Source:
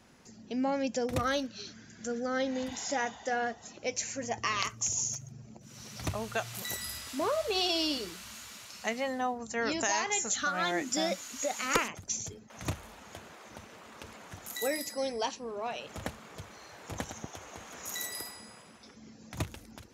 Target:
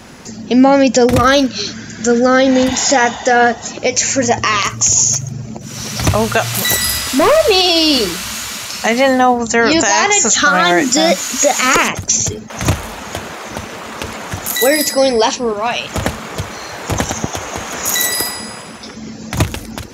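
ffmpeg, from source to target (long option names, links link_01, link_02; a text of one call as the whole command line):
ffmpeg -i in.wav -filter_complex "[0:a]asettb=1/sr,asplit=3[link_01][link_02][link_03];[link_01]atrim=end=6.414[link_04];[link_02]atrim=start=6.41:end=7.4,asetpts=PTS-STARTPTS,afade=type=in:duration=0.004:curve=qsin,afade=type=out:start_time=0.986:duration=0.004:curve=qsin,volume=29.5dB,asoftclip=hard,volume=-29.5dB[link_05];[link_03]atrim=start=7.396[link_06];[link_04][link_05]acrossfade=duration=0.004:curve1=hsin:curve2=qsin[link_07];[link_07][link_06]acrossfade=duration=0.004:curve1=qsin:curve2=hsin,asettb=1/sr,asplit=3[link_08][link_09][link_10];[link_08]atrim=end=15.534[link_11];[link_09]atrim=start=15.53:end=15.93,asetpts=PTS-STARTPTS,afade=type=in:duration=0.004:curve=qsin,afade=type=out:start_time=0.396:duration=0.004:curve=qsin,equalizer=frequency=440:width_type=o:width=1.5:gain=-9.5[link_12];[link_10]atrim=start=15.926[link_13];[link_11][link_12]acrossfade=duration=0.004:curve1=hsin:curve2=qsin[link_14];[link_14][link_13]acrossfade=duration=0.004:curve1=qsin:curve2=hsin,alimiter=level_in=24dB:limit=-1dB:release=50:level=0:latency=1,volume=-1dB" out.wav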